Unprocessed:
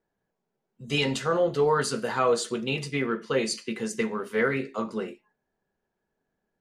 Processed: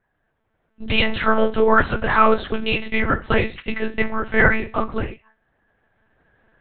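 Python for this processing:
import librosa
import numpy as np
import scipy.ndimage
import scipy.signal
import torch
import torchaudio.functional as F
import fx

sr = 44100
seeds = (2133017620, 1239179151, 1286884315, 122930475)

y = fx.recorder_agc(x, sr, target_db=-18.0, rise_db_per_s=7.7, max_gain_db=30)
y = fx.peak_eq(y, sr, hz=1600.0, db=9.0, octaves=1.3)
y = fx.lpc_monotone(y, sr, seeds[0], pitch_hz=220.0, order=8)
y = y * 10.0 ** (5.5 / 20.0)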